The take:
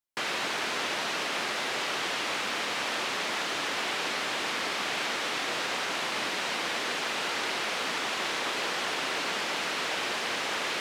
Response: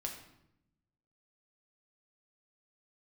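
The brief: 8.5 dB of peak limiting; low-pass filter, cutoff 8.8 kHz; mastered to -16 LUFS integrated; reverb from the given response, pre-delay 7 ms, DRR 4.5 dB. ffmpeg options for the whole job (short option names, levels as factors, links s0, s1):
-filter_complex "[0:a]lowpass=8800,alimiter=level_in=1.33:limit=0.0631:level=0:latency=1,volume=0.75,asplit=2[s0][s1];[1:a]atrim=start_sample=2205,adelay=7[s2];[s1][s2]afir=irnorm=-1:irlink=0,volume=0.631[s3];[s0][s3]amix=inputs=2:normalize=0,volume=6.68"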